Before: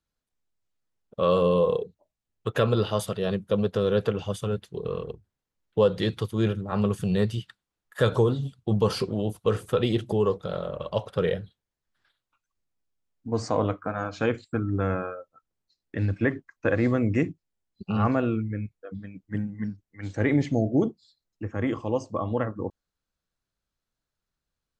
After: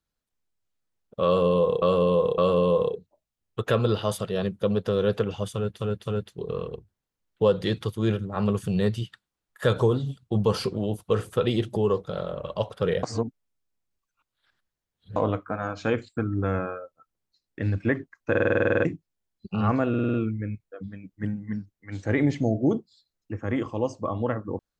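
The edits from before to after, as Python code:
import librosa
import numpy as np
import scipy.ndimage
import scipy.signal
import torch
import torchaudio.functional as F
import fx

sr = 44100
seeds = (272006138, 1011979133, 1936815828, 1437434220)

y = fx.edit(x, sr, fx.repeat(start_s=1.26, length_s=0.56, count=3),
    fx.repeat(start_s=4.41, length_s=0.26, count=3),
    fx.reverse_span(start_s=11.39, length_s=2.13),
    fx.stutter_over(start_s=16.66, slice_s=0.05, count=11),
    fx.stutter(start_s=18.25, slice_s=0.05, count=6), tone=tone)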